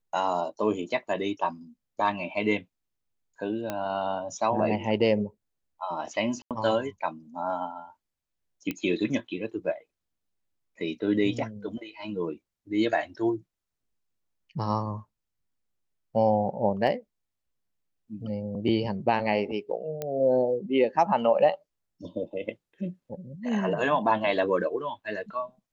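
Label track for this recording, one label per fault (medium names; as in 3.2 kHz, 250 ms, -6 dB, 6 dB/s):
3.700000	3.700000	pop -16 dBFS
6.420000	6.510000	dropout 87 ms
8.710000	8.710000	pop -17 dBFS
16.870000	16.870000	dropout 2.6 ms
20.020000	20.020000	pop -18 dBFS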